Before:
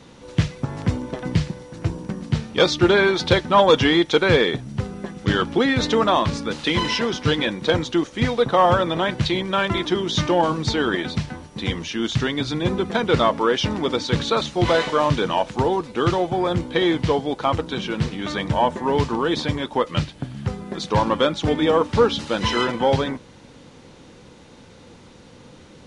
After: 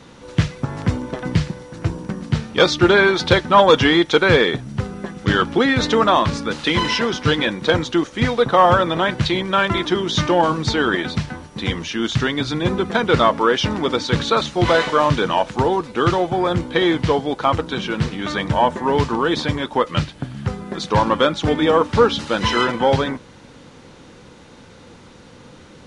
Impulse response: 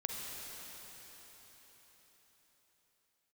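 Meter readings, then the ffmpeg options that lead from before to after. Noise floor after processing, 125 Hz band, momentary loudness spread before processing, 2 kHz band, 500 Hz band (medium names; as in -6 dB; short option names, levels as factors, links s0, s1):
-44 dBFS, +2.0 dB, 10 LU, +4.5 dB, +2.0 dB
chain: -af "equalizer=f=1400:t=o:w=0.89:g=3.5,volume=1.26"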